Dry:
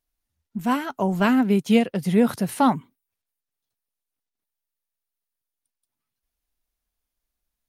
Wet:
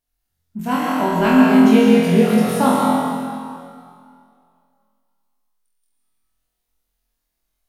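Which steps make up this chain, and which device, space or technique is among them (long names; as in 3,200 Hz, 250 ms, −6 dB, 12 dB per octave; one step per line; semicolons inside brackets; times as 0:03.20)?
tunnel (flutter between parallel walls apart 4 metres, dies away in 0.7 s; convolution reverb RT60 2.2 s, pre-delay 106 ms, DRR −1.5 dB)
level −1 dB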